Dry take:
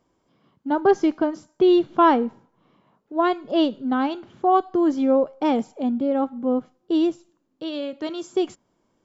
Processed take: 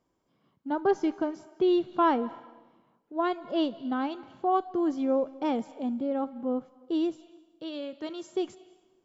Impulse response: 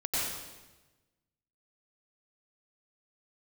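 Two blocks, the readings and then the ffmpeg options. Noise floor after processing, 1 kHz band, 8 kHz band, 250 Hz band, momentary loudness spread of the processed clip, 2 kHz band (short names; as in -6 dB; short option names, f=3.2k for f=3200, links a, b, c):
-74 dBFS, -7.5 dB, n/a, -7.5 dB, 12 LU, -7.5 dB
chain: -filter_complex "[0:a]asplit=2[a][b];[1:a]atrim=start_sample=2205,lowshelf=f=370:g=-11,adelay=73[c];[b][c]afir=irnorm=-1:irlink=0,volume=-24.5dB[d];[a][d]amix=inputs=2:normalize=0,volume=-7.5dB"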